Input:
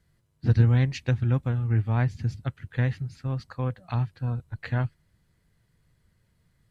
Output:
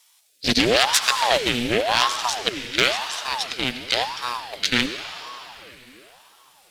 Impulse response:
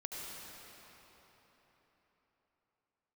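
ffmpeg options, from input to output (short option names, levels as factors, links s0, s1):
-filter_complex "[0:a]aeval=exprs='0.422*(cos(1*acos(clip(val(0)/0.422,-1,1)))-cos(1*PI/2))+0.211*(cos(8*acos(clip(val(0)/0.422,-1,1)))-cos(8*PI/2))':c=same,aexciter=amount=15:drive=9.8:freq=2100,asplit=2[s0][s1];[1:a]atrim=start_sample=2205[s2];[s1][s2]afir=irnorm=-1:irlink=0,volume=0.631[s3];[s0][s3]amix=inputs=2:normalize=0,alimiter=level_in=0.299:limit=0.891:release=50:level=0:latency=1,aeval=exprs='val(0)*sin(2*PI*670*n/s+670*0.65/0.94*sin(2*PI*0.94*n/s))':c=same"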